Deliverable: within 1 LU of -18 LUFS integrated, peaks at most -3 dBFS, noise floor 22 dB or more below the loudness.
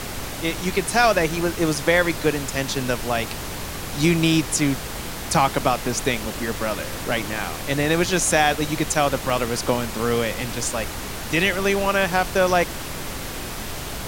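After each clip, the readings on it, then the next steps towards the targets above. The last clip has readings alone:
dropouts 2; longest dropout 1.5 ms; noise floor -32 dBFS; noise floor target -44 dBFS; loudness -22.0 LUFS; peak -4.5 dBFS; loudness target -18.0 LUFS
-> interpolate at 9.3/10.69, 1.5 ms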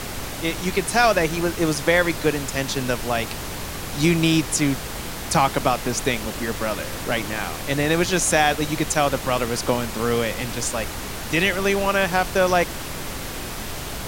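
dropouts 0; noise floor -32 dBFS; noise floor target -44 dBFS
-> noise print and reduce 12 dB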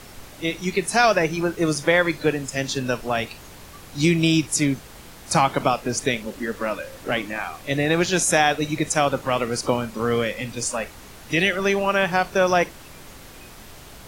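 noise floor -43 dBFS; noise floor target -44 dBFS
-> noise print and reduce 6 dB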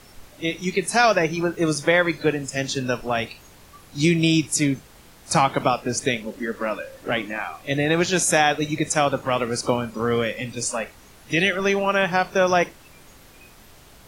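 noise floor -49 dBFS; loudness -22.0 LUFS; peak -4.5 dBFS; loudness target -18.0 LUFS
-> gain +4 dB; limiter -3 dBFS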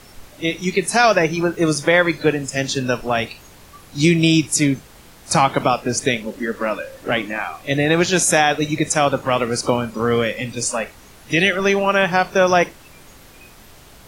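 loudness -18.5 LUFS; peak -3.0 dBFS; noise floor -45 dBFS

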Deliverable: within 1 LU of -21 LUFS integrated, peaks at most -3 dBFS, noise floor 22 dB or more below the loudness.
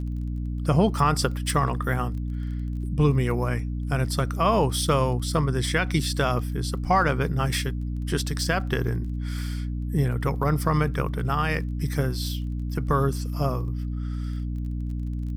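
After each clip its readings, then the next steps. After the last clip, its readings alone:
ticks 20/s; hum 60 Hz; harmonics up to 300 Hz; hum level -26 dBFS; loudness -26.0 LUFS; peak -8.0 dBFS; loudness target -21.0 LUFS
-> de-click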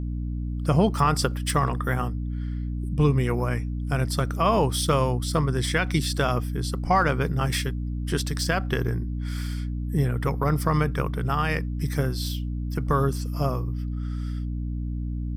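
ticks 0.26/s; hum 60 Hz; harmonics up to 300 Hz; hum level -26 dBFS
-> notches 60/120/180/240/300 Hz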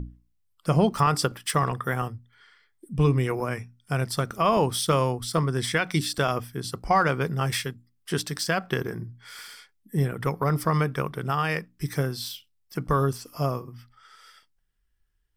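hum none; loudness -26.5 LUFS; peak -9.5 dBFS; loudness target -21.0 LUFS
-> gain +5.5 dB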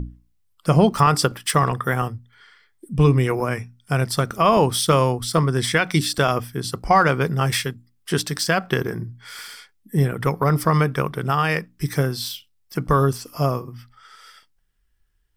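loudness -21.0 LUFS; peak -4.0 dBFS; noise floor -64 dBFS

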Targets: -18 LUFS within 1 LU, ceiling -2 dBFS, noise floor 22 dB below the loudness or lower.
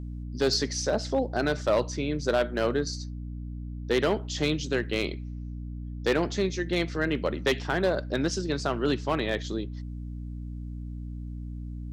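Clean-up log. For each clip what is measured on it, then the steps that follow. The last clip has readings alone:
clipped 0.5%; flat tops at -17.0 dBFS; hum 60 Hz; harmonics up to 300 Hz; hum level -34 dBFS; loudness -29.5 LUFS; peak -17.0 dBFS; loudness target -18.0 LUFS
-> clip repair -17 dBFS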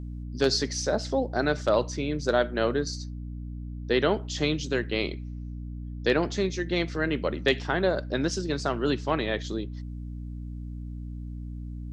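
clipped 0.0%; hum 60 Hz; harmonics up to 300 Hz; hum level -34 dBFS
-> de-hum 60 Hz, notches 5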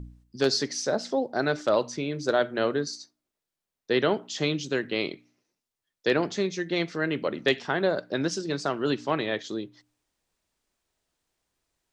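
hum none; loudness -27.5 LUFS; peak -8.0 dBFS; loudness target -18.0 LUFS
-> gain +9.5 dB; limiter -2 dBFS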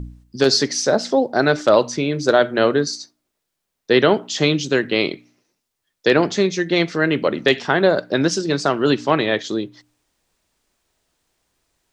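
loudness -18.5 LUFS; peak -2.0 dBFS; noise floor -78 dBFS

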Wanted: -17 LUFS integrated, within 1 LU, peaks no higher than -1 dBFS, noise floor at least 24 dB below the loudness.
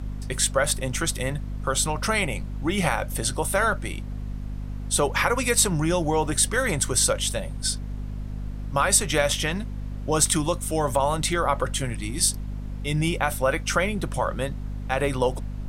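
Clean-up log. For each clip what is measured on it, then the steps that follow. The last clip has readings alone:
hum 50 Hz; harmonics up to 250 Hz; hum level -29 dBFS; noise floor -33 dBFS; noise floor target -48 dBFS; loudness -24.0 LUFS; peak -4.5 dBFS; loudness target -17.0 LUFS
-> de-hum 50 Hz, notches 5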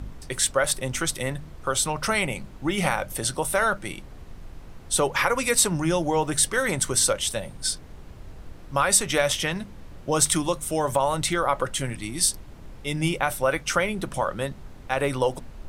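hum none; noise floor -44 dBFS; noise floor target -49 dBFS
-> noise print and reduce 6 dB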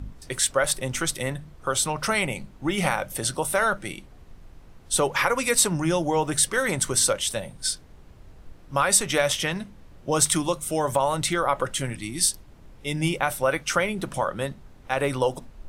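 noise floor -49 dBFS; loudness -24.5 LUFS; peak -5.0 dBFS; loudness target -17.0 LUFS
-> gain +7.5 dB; limiter -1 dBFS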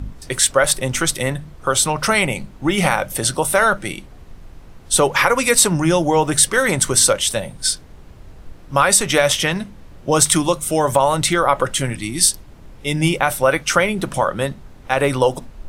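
loudness -17.0 LUFS; peak -1.0 dBFS; noise floor -42 dBFS

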